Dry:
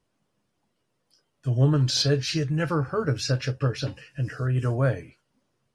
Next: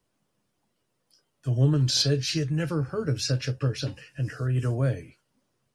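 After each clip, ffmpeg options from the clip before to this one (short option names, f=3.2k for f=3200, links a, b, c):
-filter_complex "[0:a]highshelf=f=8k:g=7,acrossover=split=120|540|2000[a][b][c][d];[c]acompressor=threshold=-41dB:ratio=6[e];[a][b][e][d]amix=inputs=4:normalize=0,volume=-1dB"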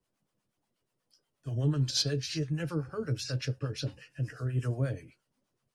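-filter_complex "[0:a]acrossover=split=680[a][b];[a]aeval=exprs='val(0)*(1-0.7/2+0.7/2*cos(2*PI*8.3*n/s))':c=same[c];[b]aeval=exprs='val(0)*(1-0.7/2-0.7/2*cos(2*PI*8.3*n/s))':c=same[d];[c][d]amix=inputs=2:normalize=0,volume=-3dB"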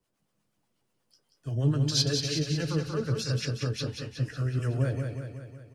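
-af "aecho=1:1:184|368|552|736|920|1104|1288|1472:0.531|0.303|0.172|0.0983|0.056|0.0319|0.0182|0.0104,volume=2.5dB"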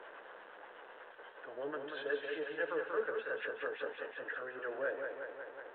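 -af "aeval=exprs='val(0)+0.5*0.0126*sgn(val(0))':c=same,highpass=f=430:w=0.5412,highpass=f=430:w=1.3066,equalizer=f=490:t=q:w=4:g=5,equalizer=f=930:t=q:w=4:g=3,equalizer=f=1.6k:t=q:w=4:g=9,equalizer=f=2.3k:t=q:w=4:g=-7,lowpass=f=2.6k:w=0.5412,lowpass=f=2.6k:w=1.3066,volume=-4dB" -ar 8000 -c:a pcm_alaw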